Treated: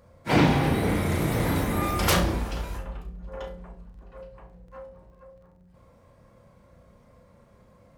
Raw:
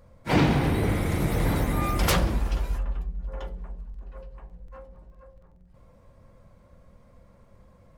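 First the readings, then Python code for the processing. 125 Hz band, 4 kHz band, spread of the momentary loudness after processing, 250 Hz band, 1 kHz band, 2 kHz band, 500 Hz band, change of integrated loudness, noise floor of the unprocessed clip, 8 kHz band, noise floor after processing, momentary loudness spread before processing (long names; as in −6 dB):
−0.5 dB, +2.0 dB, 19 LU, +1.5 dB, +2.0 dB, +2.0 dB, +1.5 dB, +1.0 dB, −56 dBFS, +2.0 dB, −57 dBFS, 19 LU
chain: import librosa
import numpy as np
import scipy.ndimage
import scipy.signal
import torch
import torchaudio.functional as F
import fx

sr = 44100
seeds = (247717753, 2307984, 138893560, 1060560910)

p1 = fx.highpass(x, sr, hz=99.0, slope=6)
p2 = p1 + fx.room_flutter(p1, sr, wall_m=5.8, rt60_s=0.3, dry=0)
y = p2 * librosa.db_to_amplitude(1.0)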